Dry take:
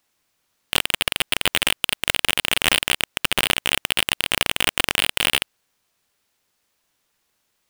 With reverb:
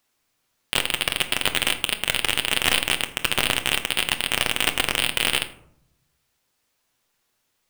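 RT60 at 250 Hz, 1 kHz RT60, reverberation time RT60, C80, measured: 1.0 s, 0.65 s, 0.70 s, 16.0 dB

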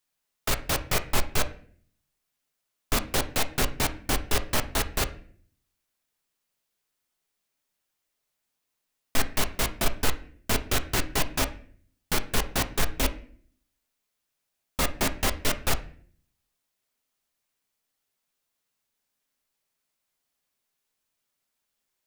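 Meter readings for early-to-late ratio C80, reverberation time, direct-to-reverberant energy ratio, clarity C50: 18.5 dB, 0.50 s, 7.5 dB, 14.5 dB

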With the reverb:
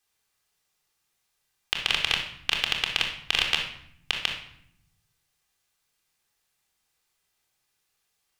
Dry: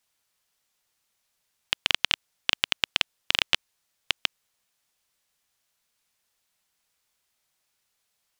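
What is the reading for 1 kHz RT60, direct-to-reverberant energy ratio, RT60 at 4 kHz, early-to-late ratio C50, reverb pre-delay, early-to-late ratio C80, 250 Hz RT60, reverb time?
0.65 s, 0.0 dB, 0.55 s, 5.5 dB, 3 ms, 9.0 dB, 1.2 s, 0.70 s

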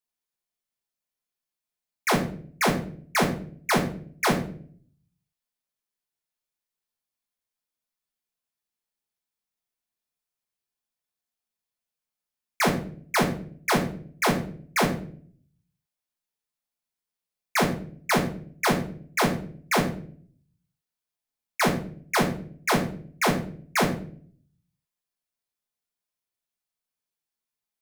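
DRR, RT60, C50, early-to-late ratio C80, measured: -1.0 dB, 0.50 s, 9.0 dB, 13.0 dB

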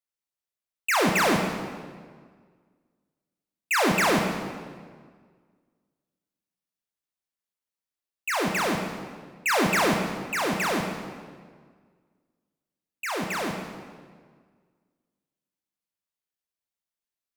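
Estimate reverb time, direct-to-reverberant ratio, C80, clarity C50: 1.7 s, 2.0 dB, 5.5 dB, 4.0 dB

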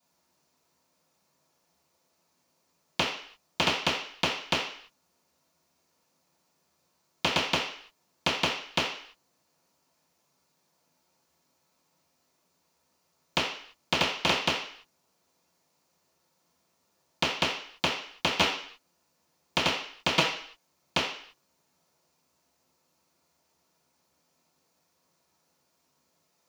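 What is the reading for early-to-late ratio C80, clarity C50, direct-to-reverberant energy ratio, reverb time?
9.0 dB, 5.0 dB, -15.5 dB, 0.55 s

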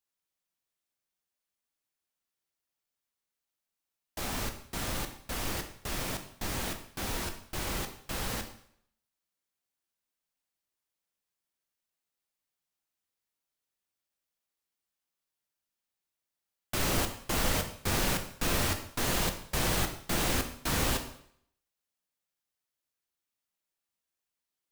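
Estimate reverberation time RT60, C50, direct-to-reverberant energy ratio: 0.65 s, 9.5 dB, 5.5 dB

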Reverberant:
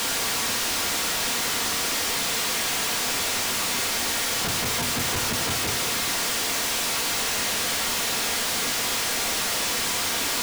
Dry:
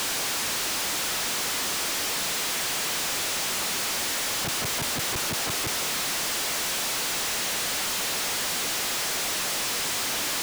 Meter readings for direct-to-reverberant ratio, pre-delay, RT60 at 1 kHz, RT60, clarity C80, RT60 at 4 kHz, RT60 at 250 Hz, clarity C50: 2.5 dB, 4 ms, 0.60 s, 0.65 s, 15.0 dB, 0.40 s, 0.85 s, 11.0 dB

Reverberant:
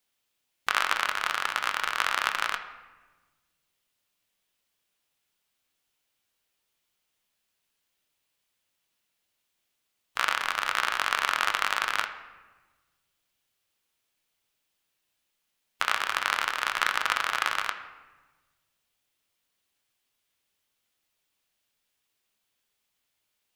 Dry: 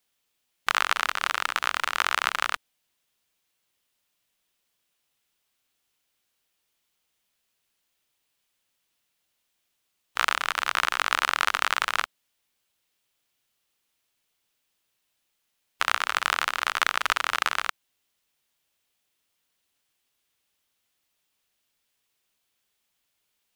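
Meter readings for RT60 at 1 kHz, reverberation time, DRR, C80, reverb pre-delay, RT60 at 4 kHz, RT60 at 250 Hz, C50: 1.2 s, 1.2 s, 6.0 dB, 12.0 dB, 8 ms, 0.85 s, 1.7 s, 10.5 dB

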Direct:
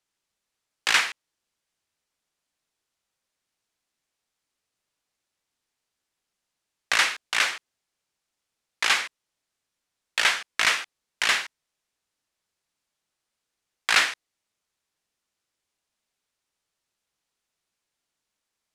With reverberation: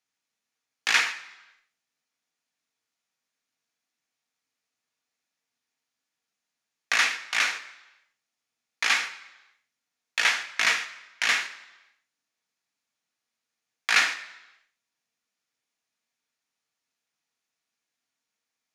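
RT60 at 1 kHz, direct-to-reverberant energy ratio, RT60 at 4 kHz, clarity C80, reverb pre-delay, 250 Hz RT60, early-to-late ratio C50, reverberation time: 1.0 s, 5.5 dB, 0.95 s, 15.0 dB, 3 ms, 0.95 s, 13.0 dB, 1.0 s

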